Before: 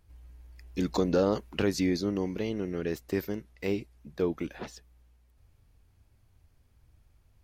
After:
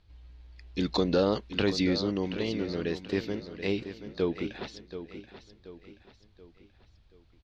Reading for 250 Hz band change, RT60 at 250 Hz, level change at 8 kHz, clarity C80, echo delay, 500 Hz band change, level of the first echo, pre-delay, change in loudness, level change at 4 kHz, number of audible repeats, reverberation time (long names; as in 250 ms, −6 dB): +0.5 dB, no reverb audible, −4.5 dB, no reverb audible, 730 ms, +0.5 dB, −11.5 dB, no reverb audible, +0.5 dB, +6.5 dB, 4, no reverb audible